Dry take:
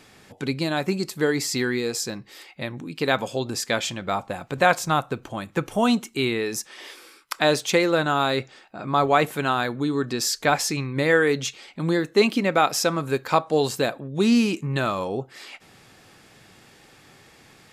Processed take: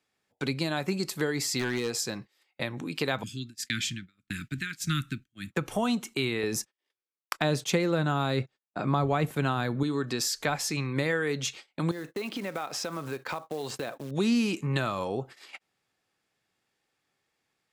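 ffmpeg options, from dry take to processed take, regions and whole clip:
ffmpeg -i in.wav -filter_complex "[0:a]asettb=1/sr,asplit=3[link_01][link_02][link_03];[link_01]atrim=end=1.594[link_04];[link_02]atrim=start=1.59:end=1.99,asetpts=PTS-STARTPTS,afade=type=in:duration=0.004:curve=qsin,afade=type=out:start_time=0.396:duration=0.004:curve=qsin,highshelf=frequency=6900:gain=-4.5,aeval=exprs='0.119*(abs(mod(val(0)/0.119+3,4)-2)-1)':channel_layout=same[link_05];[link_03]atrim=start=1.986[link_06];[link_04][link_05]acrossfade=duration=0.004:curve1=hsin:curve2=qsin[link_07];[link_07][link_06]acrossfade=duration=0.004:curve1=qsin:curve2=hsin,asettb=1/sr,asplit=3[link_08][link_09][link_10];[link_08]atrim=end=3.234[link_11];[link_09]atrim=start=3.23:end=5.52,asetpts=PTS-STARTPTS,afade=type=in:duration=0.004:curve=qsin,afade=type=out:start_time=2.286:duration=0.004:curve=qsin,lowshelf=frequency=320:gain=5,tremolo=f=1.7:d=0.83,asuperstop=centerf=680:order=8:qfactor=0.53[link_12];[link_10]atrim=start=5.516[link_13];[link_11][link_12]acrossfade=duration=0.004:curve1=hsin:curve2=qsin[link_14];[link_14][link_13]acrossfade=duration=0.004:curve1=qsin:curve2=hsin,asettb=1/sr,asplit=3[link_15][link_16][link_17];[link_15]atrim=end=6.434[link_18];[link_16]atrim=start=6.43:end=9.83,asetpts=PTS-STARTPTS,afade=type=in:duration=0.004:curve=qsin,afade=type=out:start_time=3.396:duration=0.004:curve=qsin,agate=range=-28dB:threshold=-39dB:ratio=16:release=100:detection=peak,lowshelf=frequency=460:gain=7.5[link_19];[link_17]atrim=start=9.826[link_20];[link_18][link_19]acrossfade=duration=0.004:curve1=hsin:curve2=qsin[link_21];[link_21][link_20]acrossfade=duration=0.004:curve1=qsin:curve2=hsin,asettb=1/sr,asplit=3[link_22][link_23][link_24];[link_22]atrim=end=11.914[link_25];[link_23]atrim=start=11.91:end=14.11,asetpts=PTS-STARTPTS,afade=type=in:duration=0.004:curve=qsin,afade=type=out:start_time=2.196:duration=0.004:curve=qsin,aemphasis=mode=reproduction:type=50fm,acompressor=threshold=-33dB:ratio=4:attack=3.2:release=140:knee=1:detection=peak,acrusher=bits=5:mode=log:mix=0:aa=0.000001[link_26];[link_24]atrim=start=14.106[link_27];[link_25][link_26]acrossfade=duration=0.004:curve1=hsin:curve2=qsin[link_28];[link_28][link_27]acrossfade=duration=0.004:curve1=qsin:curve2=hsin,agate=range=-30dB:threshold=-39dB:ratio=16:detection=peak,lowshelf=frequency=320:gain=-7,acrossover=split=180[link_29][link_30];[link_30]acompressor=threshold=-34dB:ratio=3[link_31];[link_29][link_31]amix=inputs=2:normalize=0,volume=4dB" out.wav

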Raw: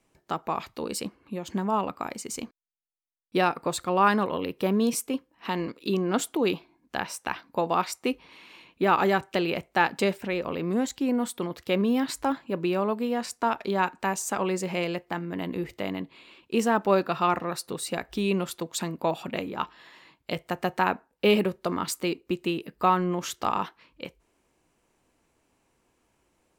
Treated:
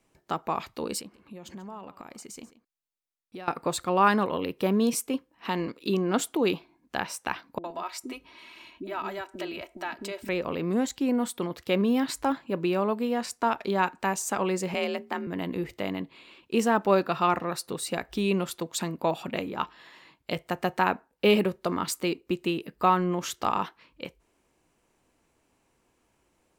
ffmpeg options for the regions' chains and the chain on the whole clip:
ffmpeg -i in.wav -filter_complex "[0:a]asettb=1/sr,asplit=3[link_01][link_02][link_03];[link_01]atrim=end=1.004[link_04];[link_02]atrim=start=1:end=3.48,asetpts=PTS-STARTPTS,afade=type=in:duration=0.004:curve=qsin,afade=type=out:start_time=2.476:duration=0.004:curve=qsin,acompressor=threshold=-41dB:ratio=4:attack=3.2:release=140:knee=1:detection=peak,aecho=1:1:138:0.158,atrim=end_sample=109368[link_05];[link_03]atrim=start=3.476[link_06];[link_04][link_05]acrossfade=duration=0.004:curve1=hsin:curve2=qsin[link_07];[link_07][link_06]acrossfade=duration=0.004:curve1=qsin:curve2=hsin,asettb=1/sr,asplit=3[link_08][link_09][link_10];[link_08]atrim=end=7.584[link_11];[link_09]atrim=start=7.58:end=10.29,asetpts=PTS-STARTPTS,afade=type=in:duration=0.004:curve=qsin,afade=type=out:start_time=2.706:duration=0.004:curve=qsin,acompressor=threshold=-39dB:ratio=2:attack=3.2:release=140:knee=1:detection=peak,aecho=1:1:3.1:0.59,atrim=end_sample=119511,acrossover=split=360[link_12][link_13];[link_13]adelay=60[link_14];[link_12][link_14]amix=inputs=2:normalize=0,atrim=end_sample=119511[link_15];[link_10]atrim=start=10.286[link_16];[link_11][link_15]acrossfade=duration=0.004:curve1=hsin:curve2=qsin[link_17];[link_17][link_16]acrossfade=duration=0.004:curve1=qsin:curve2=hsin,asettb=1/sr,asplit=3[link_18][link_19][link_20];[link_18]atrim=end=14.744[link_21];[link_19]atrim=start=14.74:end=15.27,asetpts=PTS-STARTPTS,afade=type=in:duration=0.004:curve=qsin,afade=type=out:start_time=0.526:duration=0.004:curve=qsin,bandreject=frequency=60:width_type=h:width=6,bandreject=frequency=120:width_type=h:width=6,bandreject=frequency=180:width_type=h:width=6,bandreject=frequency=240:width_type=h:width=6,bandreject=frequency=300:width_type=h:width=6,bandreject=frequency=360:width_type=h:width=6,afreqshift=44[link_22];[link_20]atrim=start=15.266[link_23];[link_21][link_22]acrossfade=duration=0.004:curve1=hsin:curve2=qsin[link_24];[link_24][link_23]acrossfade=duration=0.004:curve1=qsin:curve2=hsin" out.wav

